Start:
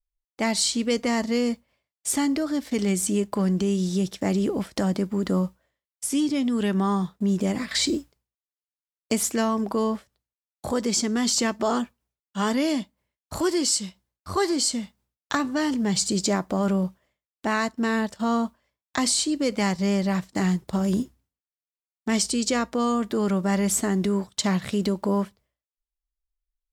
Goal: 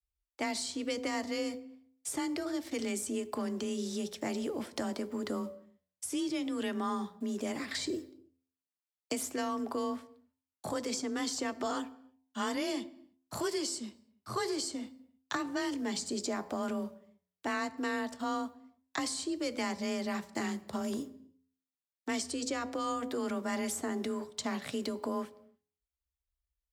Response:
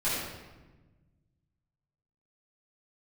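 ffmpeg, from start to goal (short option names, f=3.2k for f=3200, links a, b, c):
-filter_complex "[0:a]bandreject=f=78.95:t=h:w=4,bandreject=f=157.9:t=h:w=4,bandreject=f=236.85:t=h:w=4,bandreject=f=315.8:t=h:w=4,bandreject=f=394.75:t=h:w=4,bandreject=f=473.7:t=h:w=4,bandreject=f=552.65:t=h:w=4,bandreject=f=631.6:t=h:w=4,bandreject=f=710.55:t=h:w=4,bandreject=f=789.5:t=h:w=4,bandreject=f=868.45:t=h:w=4,bandreject=f=947.4:t=h:w=4,bandreject=f=1.02635k:t=h:w=4,afreqshift=26,acrossover=split=110|320|1400[a][b][c][d];[a]acompressor=threshold=-53dB:ratio=4[e];[b]acompressor=threshold=-36dB:ratio=4[f];[c]acompressor=threshold=-29dB:ratio=4[g];[d]acompressor=threshold=-31dB:ratio=4[h];[e][f][g][h]amix=inputs=4:normalize=0,asplit=2[i][j];[1:a]atrim=start_sample=2205,afade=t=out:st=0.38:d=0.01,atrim=end_sample=17199[k];[j][k]afir=irnorm=-1:irlink=0,volume=-28dB[l];[i][l]amix=inputs=2:normalize=0,volume=-6dB"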